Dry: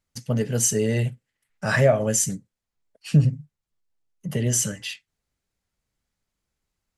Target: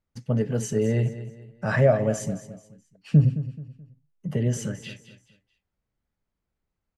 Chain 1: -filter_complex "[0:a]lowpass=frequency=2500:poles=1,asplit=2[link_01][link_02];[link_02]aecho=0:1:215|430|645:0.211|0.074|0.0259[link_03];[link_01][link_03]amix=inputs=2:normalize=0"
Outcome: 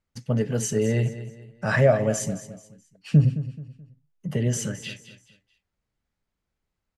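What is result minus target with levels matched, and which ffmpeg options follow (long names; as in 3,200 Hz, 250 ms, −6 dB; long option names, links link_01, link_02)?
2,000 Hz band +3.0 dB
-filter_complex "[0:a]lowpass=frequency=1200:poles=1,asplit=2[link_01][link_02];[link_02]aecho=0:1:215|430|645:0.211|0.074|0.0259[link_03];[link_01][link_03]amix=inputs=2:normalize=0"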